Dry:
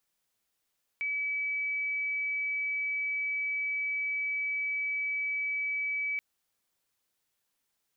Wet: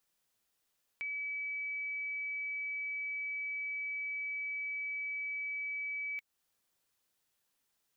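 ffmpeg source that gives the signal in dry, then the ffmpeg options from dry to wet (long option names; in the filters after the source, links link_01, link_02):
-f lavfi -i "aevalsrc='0.0355*sin(2*PI*2290*t)':duration=5.18:sample_rate=44100"
-af "bandreject=frequency=2200:width=26,acompressor=threshold=-47dB:ratio=1.5"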